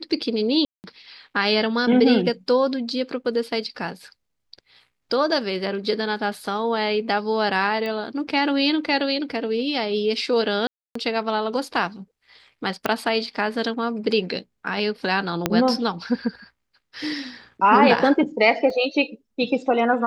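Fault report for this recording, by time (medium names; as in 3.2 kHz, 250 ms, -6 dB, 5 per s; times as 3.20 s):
0.65–0.84 s: dropout 189 ms
7.86 s: pop -17 dBFS
10.67–10.95 s: dropout 284 ms
12.86 s: pop -8 dBFS
15.46 s: pop -4 dBFS
18.70 s: dropout 2.1 ms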